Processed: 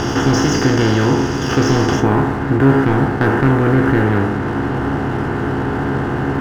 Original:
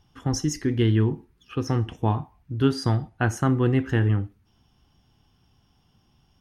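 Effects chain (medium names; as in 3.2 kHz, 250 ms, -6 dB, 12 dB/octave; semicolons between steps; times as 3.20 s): spectral levelling over time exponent 0.2; low-pass 6 kHz 24 dB/octave, from 2.00 s 2.2 kHz; waveshaping leveller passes 2; feedback comb 69 Hz, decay 0.25 s, harmonics all, mix 80%; trim +3 dB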